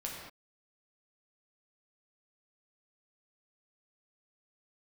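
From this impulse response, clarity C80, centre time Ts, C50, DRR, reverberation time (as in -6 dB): 3.0 dB, 63 ms, 1.0 dB, -3.0 dB, no single decay rate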